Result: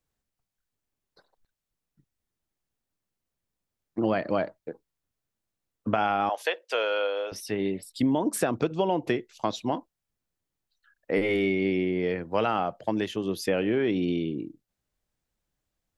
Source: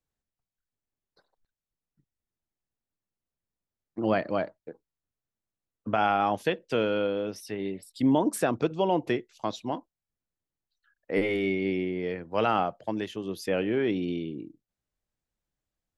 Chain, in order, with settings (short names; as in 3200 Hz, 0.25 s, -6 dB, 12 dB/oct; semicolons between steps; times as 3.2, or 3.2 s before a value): 6.29–7.32 HPF 540 Hz 24 dB/oct; compressor, threshold -26 dBFS, peak gain reduction 8 dB; gain +5 dB